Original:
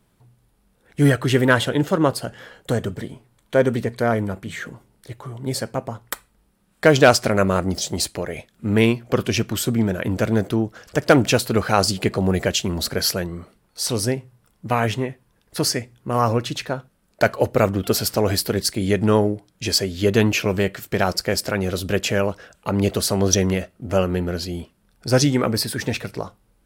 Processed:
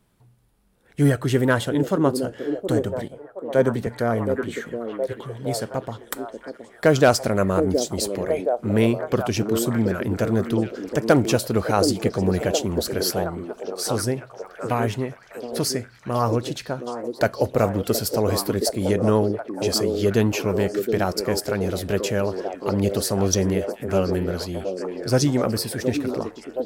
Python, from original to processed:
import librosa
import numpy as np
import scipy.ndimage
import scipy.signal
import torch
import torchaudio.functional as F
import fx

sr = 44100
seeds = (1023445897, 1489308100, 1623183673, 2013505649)

y = fx.dynamic_eq(x, sr, hz=2600.0, q=0.73, threshold_db=-34.0, ratio=4.0, max_db=-6)
y = fx.echo_stepped(y, sr, ms=720, hz=360.0, octaves=0.7, feedback_pct=70, wet_db=-2.5)
y = fx.band_widen(y, sr, depth_pct=40, at=(3.08, 3.87))
y = y * librosa.db_to_amplitude(-2.0)